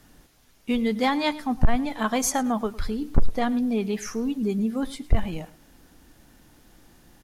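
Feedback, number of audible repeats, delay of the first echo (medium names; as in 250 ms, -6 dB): 20%, 2, 107 ms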